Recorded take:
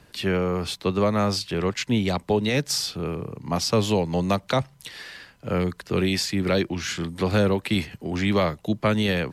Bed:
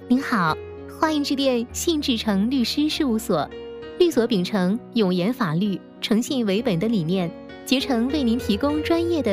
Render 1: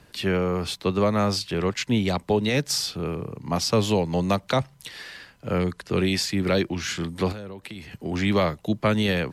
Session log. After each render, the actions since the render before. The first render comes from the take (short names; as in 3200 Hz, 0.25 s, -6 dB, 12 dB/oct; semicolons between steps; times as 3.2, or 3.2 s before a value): 5.58–6.2 brick-wall FIR low-pass 12000 Hz; 7.32–7.92 compressor 10:1, threshold -34 dBFS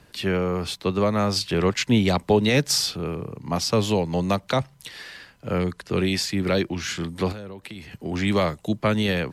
1.36–2.96 gain +3.5 dB; 8.27–8.76 bell 8200 Hz +9 dB 0.57 oct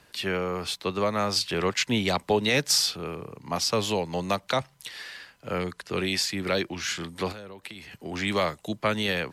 low shelf 400 Hz -10 dB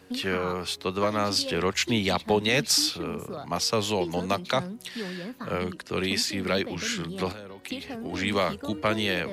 add bed -15.5 dB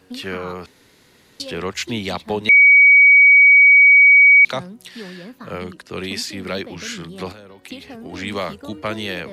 0.66–1.4 room tone; 2.49–4.45 bleep 2260 Hz -6 dBFS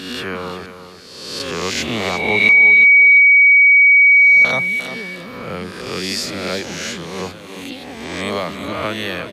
spectral swells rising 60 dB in 1.21 s; feedback echo 0.353 s, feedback 26%, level -10.5 dB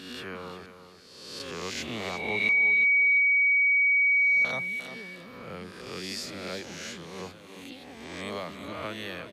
gain -13 dB